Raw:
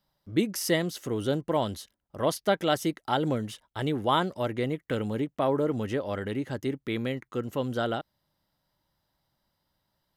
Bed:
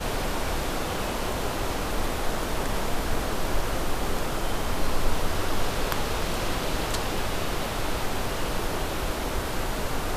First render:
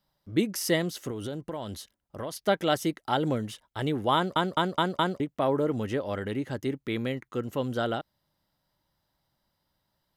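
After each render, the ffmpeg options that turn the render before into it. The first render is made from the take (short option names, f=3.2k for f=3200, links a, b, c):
-filter_complex "[0:a]asettb=1/sr,asplit=3[a][b][c];[a]atrim=end=1.104[d];[b]atrim=start=1.1:end=2.43,asetpts=PTS-STARTPTS,afade=t=in:d=0.004:c=qsin,afade=t=out:st=1.326:d=0.004:c=qsin,acompressor=threshold=-31dB:ratio=6:attack=3.2:release=140:knee=1:detection=peak[e];[c]atrim=start=2.426[f];[d][e]acrossfade=d=0.004:c1=hsin:c2=qsin[g];[g][f]acrossfade=d=0.004:c1=qsin:c2=hsin,asplit=6[h][i][j][k][l][m];[h]atrim=end=4.362[n];[i]atrim=start=4.148:end=4.362[o];[j]atrim=start=4.148:end=4.362[p];[k]atrim=start=4.148:end=4.362[q];[l]atrim=start=4.148:end=4.362[r];[m]atrim=start=5.198[s];[n][o]acrossfade=d=0.004:c1=hsin:c2=hsin[t];[t][p]acrossfade=d=0.004:c1=hsin:c2=hsin[u];[u][q]acrossfade=d=0.004:c1=hsin:c2=hsin[v];[v][r]acrossfade=d=0.004:c1=hsin:c2=hsin[w];[w][s]acrossfade=d=0.004:c1=hsin:c2=hsin"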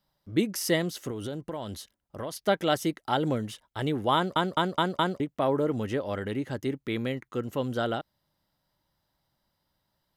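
-af anull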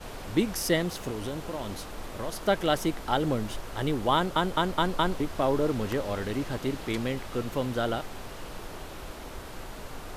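-filter_complex "[1:a]volume=-12dB[a];[0:a][a]amix=inputs=2:normalize=0"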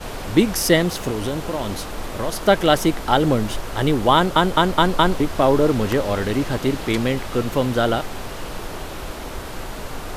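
-af "volume=9.5dB,alimiter=limit=-2dB:level=0:latency=1"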